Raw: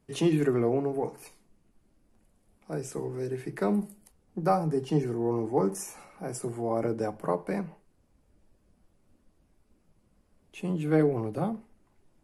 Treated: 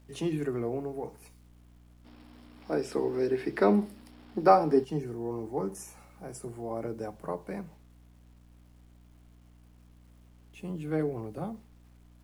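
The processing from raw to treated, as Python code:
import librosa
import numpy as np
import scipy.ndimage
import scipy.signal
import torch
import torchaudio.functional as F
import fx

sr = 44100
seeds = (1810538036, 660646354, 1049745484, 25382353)

y = fx.add_hum(x, sr, base_hz=60, snr_db=19)
y = fx.quant_dither(y, sr, seeds[0], bits=10, dither='none')
y = fx.spec_box(y, sr, start_s=2.05, length_s=2.79, low_hz=210.0, high_hz=5600.0, gain_db=12)
y = y * 10.0 ** (-6.5 / 20.0)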